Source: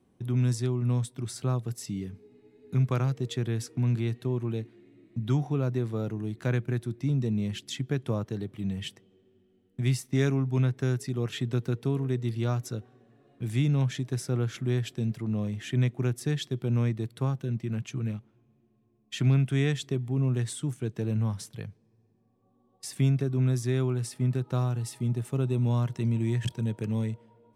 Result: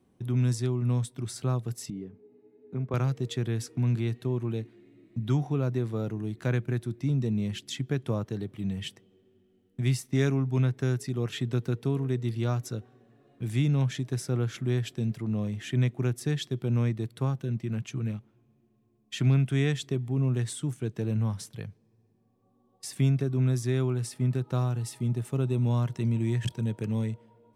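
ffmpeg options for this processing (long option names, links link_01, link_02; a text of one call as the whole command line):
ffmpeg -i in.wav -filter_complex "[0:a]asettb=1/sr,asplit=3[link_01][link_02][link_03];[link_01]atrim=end=1.904[link_04];[link_02]atrim=start=1.9:end=2.94,asetpts=PTS-STARTPTS,afade=type=in:duration=0.004:curve=qsin,afade=type=out:start_time=1.036:duration=0.004:curve=qsin,bandpass=frequency=450:width_type=q:width=0.75[link_05];[link_03]atrim=start=2.936[link_06];[link_04][link_05]acrossfade=duration=0.004:curve1=hsin:curve2=qsin[link_07];[link_07][link_06]acrossfade=duration=0.004:curve1=qsin:curve2=hsin" out.wav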